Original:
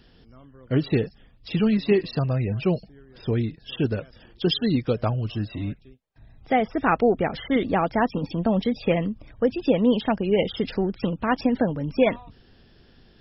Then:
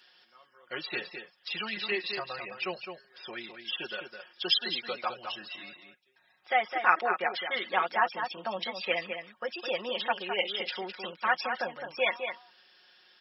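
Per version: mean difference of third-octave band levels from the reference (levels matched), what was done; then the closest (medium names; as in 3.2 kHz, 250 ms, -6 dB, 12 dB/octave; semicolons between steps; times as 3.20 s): 10.0 dB: high-pass 1.1 kHz 12 dB/octave; comb 5.5 ms, depth 82%; echo from a far wall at 36 m, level -7 dB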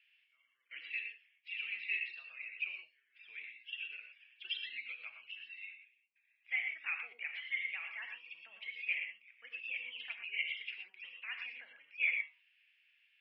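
15.0 dB: Butterworth band-pass 2.4 kHz, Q 4; gated-style reverb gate 140 ms rising, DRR 4 dB; flange 0.2 Hz, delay 7 ms, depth 6.7 ms, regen -72%; trim +5.5 dB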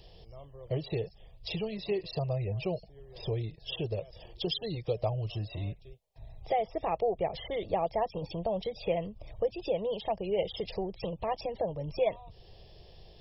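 4.0 dB: peaking EQ 640 Hz +3.5 dB 0.47 oct; compression 2:1, threshold -36 dBFS, peak gain reduction 12.5 dB; static phaser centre 610 Hz, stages 4; trim +3.5 dB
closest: third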